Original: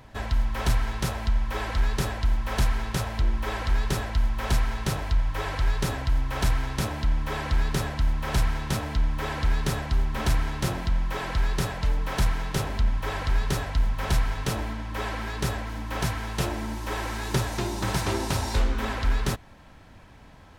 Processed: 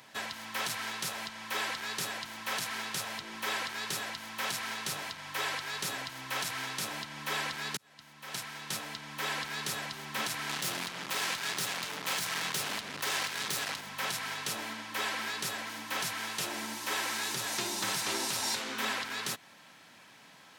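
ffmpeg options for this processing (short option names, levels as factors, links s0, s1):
-filter_complex "[0:a]asettb=1/sr,asplit=3[s0][s1][s2];[s0]atrim=end=10.494[s3];[s1]atrim=start=10.49:end=13.81,asetpts=PTS-STARTPTS,afade=t=in:d=0.004:c=qsin,afade=t=out:st=3.316:d=0.004:c=qsin,acrusher=bits=4:mix=0:aa=0.5[s4];[s2]atrim=start=13.806[s5];[s3][s4]acrossfade=d=0.004:c1=hsin:c2=qsin[s6];[s6][s5]acrossfade=d=0.004:c1=qsin:c2=hsin,asplit=2[s7][s8];[s7]atrim=end=7.77,asetpts=PTS-STARTPTS,afade=t=out:st=7.766:d=0.004:c=hsin[s9];[s8]atrim=start=7.77,asetpts=PTS-STARTPTS,afade=t=in:d=1.65[s10];[s9][s10]concat=n=2:v=0:a=1,highpass=f=150:w=0.5412,highpass=f=150:w=1.3066,tiltshelf=f=1300:g=-8,alimiter=limit=0.112:level=0:latency=1:release=158,volume=0.841"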